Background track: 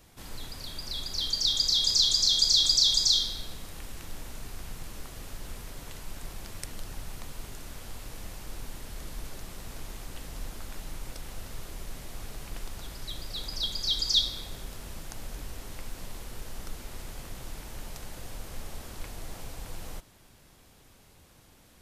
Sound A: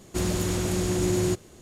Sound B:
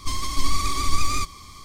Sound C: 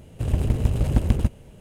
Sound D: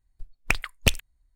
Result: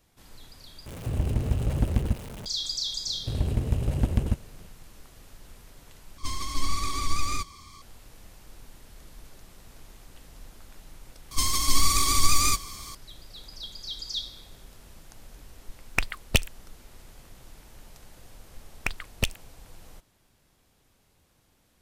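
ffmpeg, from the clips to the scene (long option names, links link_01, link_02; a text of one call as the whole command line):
ffmpeg -i bed.wav -i cue0.wav -i cue1.wav -i cue2.wav -i cue3.wav -filter_complex "[3:a]asplit=2[link_01][link_02];[2:a]asplit=2[link_03][link_04];[4:a]asplit=2[link_05][link_06];[0:a]volume=-8.5dB[link_07];[link_01]aeval=exprs='val(0)+0.5*0.0316*sgn(val(0))':channel_layout=same[link_08];[link_04]crystalizer=i=2:c=0[link_09];[link_07]asplit=3[link_10][link_11][link_12];[link_10]atrim=end=0.864[link_13];[link_08]atrim=end=1.6,asetpts=PTS-STARTPTS,volume=-5.5dB[link_14];[link_11]atrim=start=2.456:end=6.184[link_15];[link_03]atrim=end=1.64,asetpts=PTS-STARTPTS,volume=-5dB[link_16];[link_12]atrim=start=7.816[link_17];[link_02]atrim=end=1.6,asetpts=PTS-STARTPTS,volume=-4.5dB,afade=type=in:duration=0.004:curve=hsin,afade=type=out:start_time=1.596:duration=0.004:curve=hsin,adelay=3070[link_18];[link_09]atrim=end=1.64,asetpts=PTS-STARTPTS,volume=-1dB,afade=type=in:duration=0.004:curve=hsin,afade=type=out:start_time=1.636:duration=0.004:curve=hsin,adelay=11310[link_19];[link_05]atrim=end=1.35,asetpts=PTS-STARTPTS,volume=-1.5dB,afade=type=in:duration=0.004:curve=hsin,afade=type=out:start_time=1.346:duration=0.004:curve=hsin,adelay=15480[link_20];[link_06]atrim=end=1.35,asetpts=PTS-STARTPTS,volume=-6dB,afade=type=in:duration=0.004:curve=hsin,afade=type=out:start_time=1.346:duration=0.004:curve=hsin,adelay=18360[link_21];[link_13][link_14]acrossfade=duration=0.004:curve1=hsin:curve2=hsin[link_22];[link_22][link_15]acrossfade=duration=0.004:curve1=hsin:curve2=hsin[link_23];[link_23][link_16]acrossfade=duration=0.004:curve1=hsin:curve2=hsin[link_24];[link_24][link_17]acrossfade=duration=0.004:curve1=hsin:curve2=hsin[link_25];[link_25][link_18][link_19][link_20][link_21]amix=inputs=5:normalize=0" out.wav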